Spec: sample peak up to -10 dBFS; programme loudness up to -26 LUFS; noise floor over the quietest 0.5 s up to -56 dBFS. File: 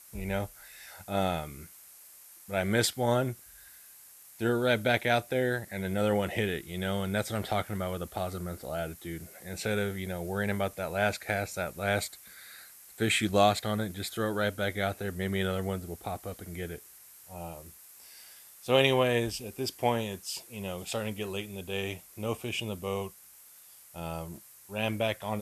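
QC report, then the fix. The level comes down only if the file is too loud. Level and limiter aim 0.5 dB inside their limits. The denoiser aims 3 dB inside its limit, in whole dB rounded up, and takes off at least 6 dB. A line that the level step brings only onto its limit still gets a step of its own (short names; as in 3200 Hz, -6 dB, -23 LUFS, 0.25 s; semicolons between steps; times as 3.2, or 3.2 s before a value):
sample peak -8.0 dBFS: fail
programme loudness -31.0 LUFS: OK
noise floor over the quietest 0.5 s -54 dBFS: fail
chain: denoiser 6 dB, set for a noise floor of -54 dBFS; limiter -10.5 dBFS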